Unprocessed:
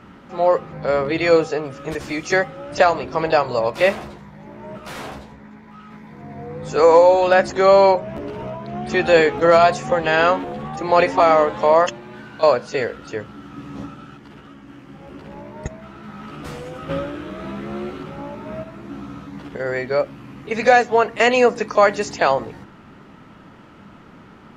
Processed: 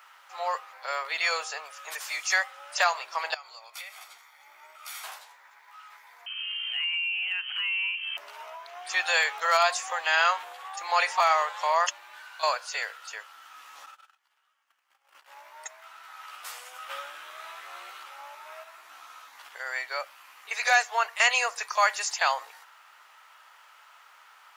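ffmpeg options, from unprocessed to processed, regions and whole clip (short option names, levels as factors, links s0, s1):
-filter_complex "[0:a]asettb=1/sr,asplit=3[s0][s1][s2];[s0]atrim=end=3.344[s3];[s1]atrim=start=3.34:end=5.04,asetpts=PTS-STARTPTS,afade=t=in:d=0.004:c=qsin,afade=t=out:st=1.696:d=0.004:c=qsin,equalizer=f=1000:t=o:w=0.28:g=-13.5,aecho=1:1:0.9:0.5,atrim=end_sample=74970,acompressor=threshold=0.0251:ratio=16:attack=3.2:release=140:knee=1:detection=peak[s4];[s2]atrim=start=5.036[s5];[s3][s4]acrossfade=d=0.004:c1=hsin:c2=qsin[s6];[s6][s5]acrossfade=d=0.004:c1=qsin:c2=hsin,asettb=1/sr,asplit=3[s7][s8][s9];[s7]atrim=end=6.264[s10];[s8]atrim=start=6.26:end=8.17,asetpts=PTS-STARTPTS,afade=t=in:d=0.004:c=qsin,afade=t=out:st=1.906:d=0.004:c=qsin,lowpass=f=2800:t=q:w=0.5098,lowpass=f=2800:t=q:w=0.6013,lowpass=f=2800:t=q:w=0.9,lowpass=f=2800:t=q:w=2.563,afreqshift=-3300,acompressor=threshold=0.0447:ratio=5:attack=3.2:release=140:knee=1:detection=peak[s11];[s9]atrim=start=8.166[s12];[s10][s11]acrossfade=d=0.004:c1=hsin:c2=qsin[s13];[s13][s12]acrossfade=d=0.004:c1=qsin:c2=hsin,asettb=1/sr,asplit=3[s14][s15][s16];[s14]atrim=end=13.864[s17];[s15]atrim=start=13.86:end=15.29,asetpts=PTS-STARTPTS,afade=t=in:d=0.004:c=qsin,afade=t=out:st=1.426:d=0.004:c=qsin,agate=range=0.0794:threshold=0.0126:ratio=16:release=100:detection=peak,acompressor=mode=upward:threshold=0.00141:ratio=2.5:attack=3.2:release=140:knee=2.83:detection=peak[s18];[s16]atrim=start=15.286[s19];[s17][s18]acrossfade=d=0.004:c1=hsin:c2=qsin[s20];[s20][s19]acrossfade=d=0.004:c1=qsin:c2=hsin,highpass=f=840:w=0.5412,highpass=f=840:w=1.3066,aemphasis=mode=production:type=bsi,volume=0.596"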